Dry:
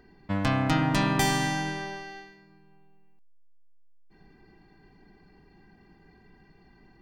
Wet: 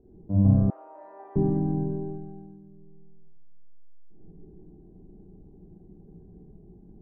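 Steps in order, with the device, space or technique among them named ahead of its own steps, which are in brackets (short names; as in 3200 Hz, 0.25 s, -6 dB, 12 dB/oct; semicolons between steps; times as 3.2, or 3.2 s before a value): next room (LPF 540 Hz 24 dB/oct; reverb RT60 1.1 s, pre-delay 29 ms, DRR -6.5 dB); 0.7–1.36 Bessel high-pass 950 Hz, order 6; gain -1 dB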